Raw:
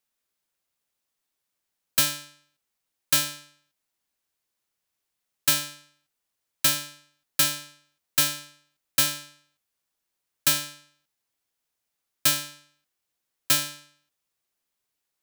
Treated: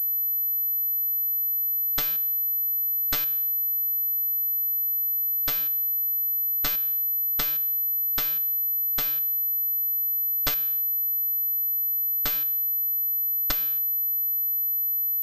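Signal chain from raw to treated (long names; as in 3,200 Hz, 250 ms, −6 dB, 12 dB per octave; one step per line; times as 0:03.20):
harmonic generator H 2 −6 dB, 3 −7 dB, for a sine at −8 dBFS
shaped tremolo saw up 3.7 Hz, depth 65%
switching amplifier with a slow clock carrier 12,000 Hz
level +3.5 dB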